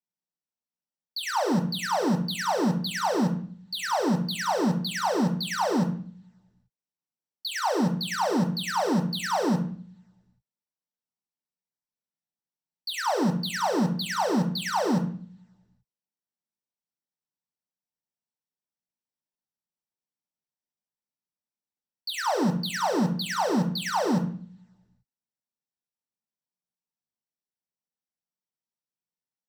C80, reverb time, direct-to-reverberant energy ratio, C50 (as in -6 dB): 14.5 dB, 0.50 s, 2.5 dB, 9.5 dB